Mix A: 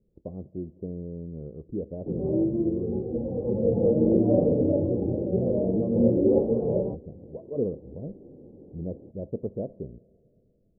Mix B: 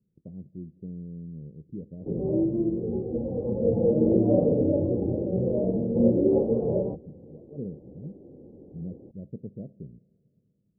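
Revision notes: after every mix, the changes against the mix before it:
speech: add band-pass 160 Hz, Q 1.7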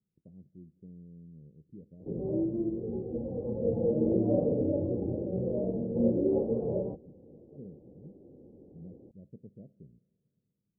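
speech -11.0 dB; background -5.5 dB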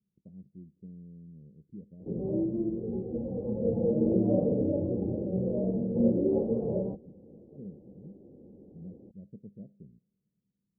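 speech: send -8.5 dB; master: add bell 200 Hz +7 dB 0.3 oct

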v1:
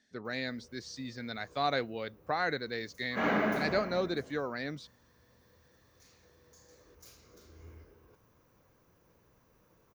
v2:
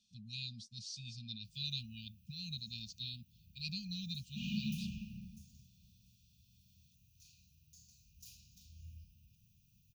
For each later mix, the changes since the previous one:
background: entry +1.20 s; master: add brick-wall FIR band-stop 220–2400 Hz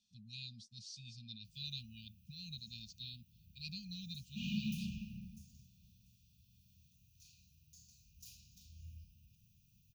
speech -4.5 dB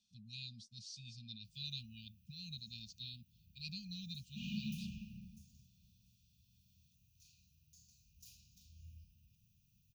background -3.5 dB

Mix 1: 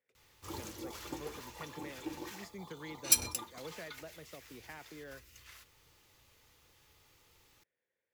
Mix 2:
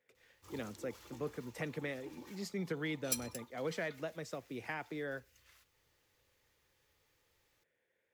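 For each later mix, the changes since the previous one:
speech +8.5 dB; background -10.5 dB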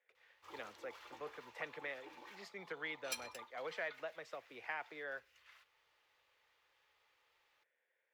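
background +5.0 dB; master: add three-band isolator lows -22 dB, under 530 Hz, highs -17 dB, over 3800 Hz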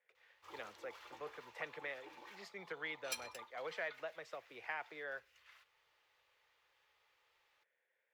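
master: add bell 260 Hz -4 dB 0.44 oct

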